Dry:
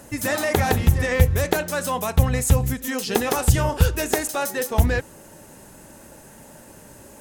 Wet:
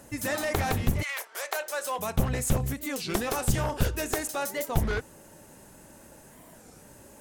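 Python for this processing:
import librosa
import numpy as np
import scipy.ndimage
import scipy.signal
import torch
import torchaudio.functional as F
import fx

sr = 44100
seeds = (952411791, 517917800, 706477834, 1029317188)

y = np.minimum(x, 2.0 * 10.0 ** (-17.5 / 20.0) - x)
y = fx.highpass(y, sr, hz=fx.line((1.03, 1100.0), (1.98, 330.0)), slope=24, at=(1.03, 1.98), fade=0.02)
y = fx.record_warp(y, sr, rpm=33.33, depth_cents=250.0)
y = y * librosa.db_to_amplitude(-6.0)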